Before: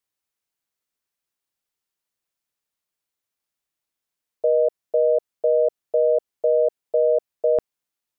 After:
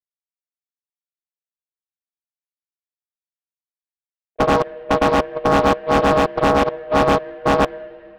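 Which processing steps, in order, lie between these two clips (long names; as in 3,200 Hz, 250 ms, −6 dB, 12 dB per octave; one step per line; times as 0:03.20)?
variable-slope delta modulation 16 kbit/s
output level in coarse steps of 19 dB
granular cloud 213 ms, grains 7.7 per second, spray 100 ms, pitch spread up and down by 0 semitones
wave folding −17 dBFS
on a send at −14 dB: high-frequency loss of the air 310 metres + convolution reverb RT60 3.7 s, pre-delay 38 ms
on the sum: highs frequency-modulated by the lows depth 0.83 ms
level +8.5 dB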